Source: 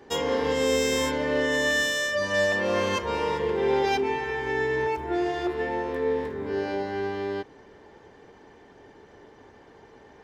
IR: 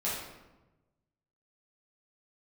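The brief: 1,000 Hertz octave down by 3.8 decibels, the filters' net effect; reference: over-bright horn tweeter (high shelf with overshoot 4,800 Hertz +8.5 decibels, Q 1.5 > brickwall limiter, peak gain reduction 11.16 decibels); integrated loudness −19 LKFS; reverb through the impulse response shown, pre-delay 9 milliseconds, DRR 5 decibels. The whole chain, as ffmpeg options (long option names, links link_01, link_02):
-filter_complex "[0:a]equalizer=frequency=1000:width_type=o:gain=-4.5,asplit=2[link_01][link_02];[1:a]atrim=start_sample=2205,adelay=9[link_03];[link_02][link_03]afir=irnorm=-1:irlink=0,volume=-11.5dB[link_04];[link_01][link_04]amix=inputs=2:normalize=0,highshelf=frequency=4800:width_type=q:width=1.5:gain=8.5,volume=11.5dB,alimiter=limit=-11.5dB:level=0:latency=1"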